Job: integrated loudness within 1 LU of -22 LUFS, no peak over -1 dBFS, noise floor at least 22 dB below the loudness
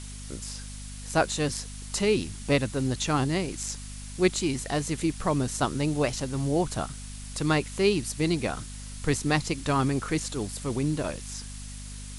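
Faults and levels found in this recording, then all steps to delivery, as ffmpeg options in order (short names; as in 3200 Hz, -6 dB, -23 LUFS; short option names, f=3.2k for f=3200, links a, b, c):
hum 50 Hz; harmonics up to 250 Hz; hum level -38 dBFS; noise floor -40 dBFS; noise floor target -50 dBFS; loudness -28.0 LUFS; peak -9.0 dBFS; loudness target -22.0 LUFS
-> -af "bandreject=f=50:t=h:w=4,bandreject=f=100:t=h:w=4,bandreject=f=150:t=h:w=4,bandreject=f=200:t=h:w=4,bandreject=f=250:t=h:w=4"
-af "afftdn=nr=10:nf=-40"
-af "volume=6dB"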